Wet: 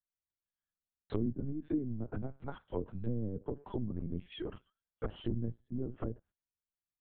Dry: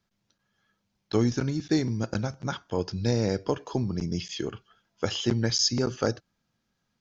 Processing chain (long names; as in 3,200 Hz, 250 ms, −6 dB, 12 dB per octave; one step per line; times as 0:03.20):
treble cut that deepens with the level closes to 320 Hz, closed at −22.5 dBFS
noise gate −51 dBFS, range −21 dB
linear-prediction vocoder at 8 kHz pitch kept
0:01.26–0:03.65: multiband upward and downward expander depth 40%
level −8 dB